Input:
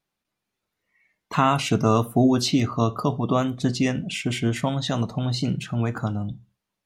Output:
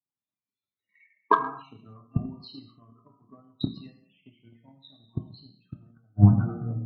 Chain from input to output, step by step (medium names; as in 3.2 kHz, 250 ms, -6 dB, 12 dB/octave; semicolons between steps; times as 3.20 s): fade out at the end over 1.26 s; high-pass 43 Hz 24 dB/octave; de-hum 164.3 Hz, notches 7; on a send: repeats whose band climbs or falls 221 ms, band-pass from 2.7 kHz, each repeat -1.4 oct, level -9 dB; on the sum: inverted gate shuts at -22 dBFS, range -38 dB; loudest bins only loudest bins 16; gated-style reverb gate 300 ms falling, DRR 0.5 dB; in parallel at -6.5 dB: saturation -37 dBFS, distortion -7 dB; on the sum: graphic EQ 125/250/1000/4000 Hz +8/+5/+9/+12 dB; transient shaper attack +8 dB, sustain 0 dB; three bands expanded up and down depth 70%